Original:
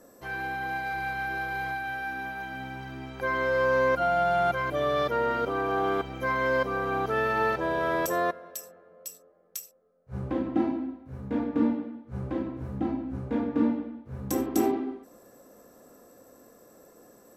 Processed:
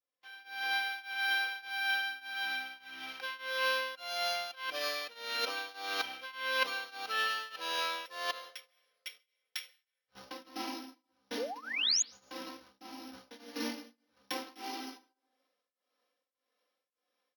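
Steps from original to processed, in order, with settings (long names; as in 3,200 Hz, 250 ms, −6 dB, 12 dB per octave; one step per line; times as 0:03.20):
samples sorted by size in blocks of 8 samples
drawn EQ curve 170 Hz 0 dB, 3,000 Hz +8 dB, 7,300 Hz −20 dB, 12,000 Hz −22 dB
sound drawn into the spectrogram rise, 0:11.37–0:12.02, 400–7,000 Hz −22 dBFS
first difference
reversed playback
downward compressor 6 to 1, threshold −39 dBFS, peak gain reduction 14.5 dB
reversed playback
noise gate −59 dBFS, range −21 dB
automatic gain control gain up to 16.5 dB
on a send at −19.5 dB: convolution reverb RT60 0.75 s, pre-delay 123 ms
on the sum: shaped tremolo triangle 1.7 Hz, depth 95%
comb filter 3.9 ms, depth 58%
level −6 dB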